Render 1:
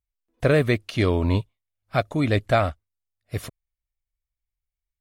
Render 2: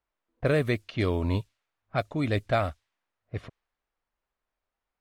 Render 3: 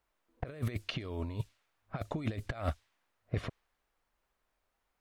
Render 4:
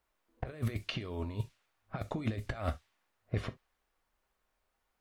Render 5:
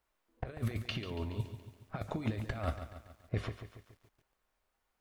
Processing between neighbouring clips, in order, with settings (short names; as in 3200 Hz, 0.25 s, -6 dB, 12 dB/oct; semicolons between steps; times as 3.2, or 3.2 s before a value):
added noise blue -60 dBFS; low-pass opened by the level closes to 1100 Hz, open at -16.5 dBFS; gain -5.5 dB
negative-ratio compressor -32 dBFS, ratio -0.5; gain -2 dB
non-linear reverb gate 90 ms falling, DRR 10 dB
lo-fi delay 0.141 s, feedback 55%, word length 10-bit, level -10 dB; gain -1 dB